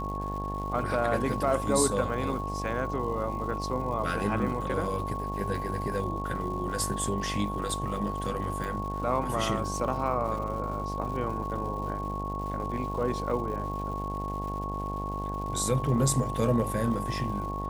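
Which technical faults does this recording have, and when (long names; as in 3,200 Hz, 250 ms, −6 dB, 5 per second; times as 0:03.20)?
mains buzz 50 Hz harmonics 19 −35 dBFS
surface crackle 280 per second −40 dBFS
whistle 1,100 Hz −34 dBFS
0:08.64: click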